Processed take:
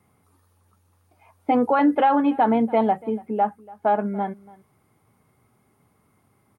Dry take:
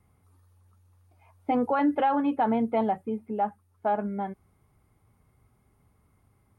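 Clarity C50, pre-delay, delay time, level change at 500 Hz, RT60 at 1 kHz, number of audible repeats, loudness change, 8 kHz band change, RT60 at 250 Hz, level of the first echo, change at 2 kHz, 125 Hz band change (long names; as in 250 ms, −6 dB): no reverb audible, no reverb audible, 287 ms, +6.0 dB, no reverb audible, 1, +6.0 dB, can't be measured, no reverb audible, −22.0 dB, +6.0 dB, +4.5 dB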